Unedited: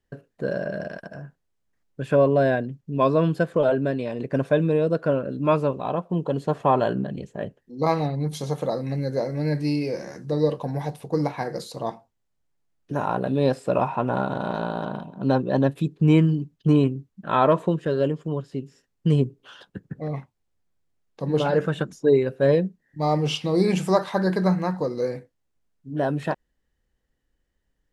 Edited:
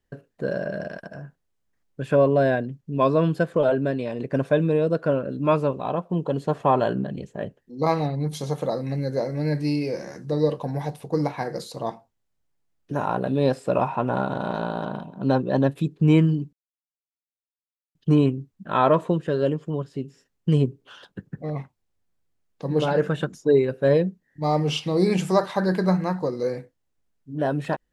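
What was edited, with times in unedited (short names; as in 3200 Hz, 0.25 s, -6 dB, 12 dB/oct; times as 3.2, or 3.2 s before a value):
16.53 insert silence 1.42 s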